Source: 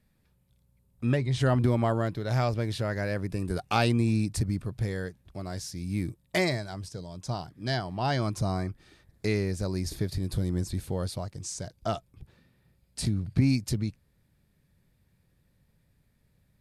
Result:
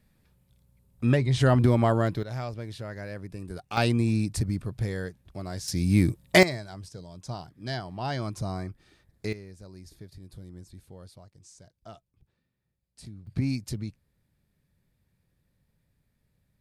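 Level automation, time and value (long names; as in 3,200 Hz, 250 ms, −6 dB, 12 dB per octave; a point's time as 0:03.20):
+3.5 dB
from 0:02.23 −7.5 dB
from 0:03.77 +0.5 dB
from 0:05.68 +9.5 dB
from 0:06.43 −3.5 dB
from 0:09.33 −16 dB
from 0:13.27 −4.5 dB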